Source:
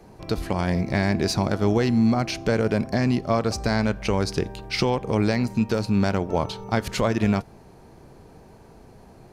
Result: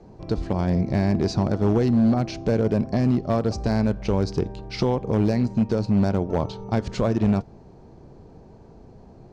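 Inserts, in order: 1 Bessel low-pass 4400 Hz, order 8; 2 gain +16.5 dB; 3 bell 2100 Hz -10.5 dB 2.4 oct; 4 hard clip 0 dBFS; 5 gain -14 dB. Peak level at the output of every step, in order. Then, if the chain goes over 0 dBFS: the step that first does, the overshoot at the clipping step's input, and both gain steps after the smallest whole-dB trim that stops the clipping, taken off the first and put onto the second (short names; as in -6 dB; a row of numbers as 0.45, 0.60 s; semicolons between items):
-9.0, +7.5, +5.0, 0.0, -14.0 dBFS; step 2, 5.0 dB; step 2 +11.5 dB, step 5 -9 dB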